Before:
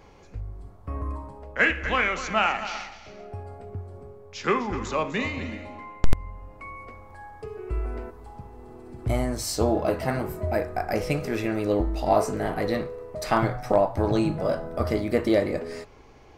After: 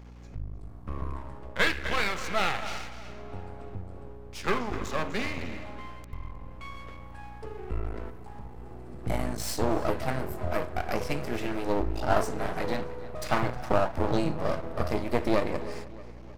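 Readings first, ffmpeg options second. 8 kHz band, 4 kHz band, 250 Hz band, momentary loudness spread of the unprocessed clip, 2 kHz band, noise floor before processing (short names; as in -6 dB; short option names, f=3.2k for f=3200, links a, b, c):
-3.5 dB, -1.0 dB, -5.0 dB, 19 LU, -4.0 dB, -49 dBFS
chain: -filter_complex "[0:a]aeval=exprs='max(val(0),0)':c=same,asplit=2[a][b];[b]adelay=312,lowpass=f=4.8k:p=1,volume=-17dB,asplit=2[c][d];[d]adelay=312,lowpass=f=4.8k:p=1,volume=0.52,asplit=2[e][f];[f]adelay=312,lowpass=f=4.8k:p=1,volume=0.52,asplit=2[g][h];[h]adelay=312,lowpass=f=4.8k:p=1,volume=0.52,asplit=2[i][j];[j]adelay=312,lowpass=f=4.8k:p=1,volume=0.52[k];[a][c][e][g][i][k]amix=inputs=6:normalize=0,aeval=exprs='val(0)+0.00501*(sin(2*PI*60*n/s)+sin(2*PI*2*60*n/s)/2+sin(2*PI*3*60*n/s)/3+sin(2*PI*4*60*n/s)/4+sin(2*PI*5*60*n/s)/5)':c=same"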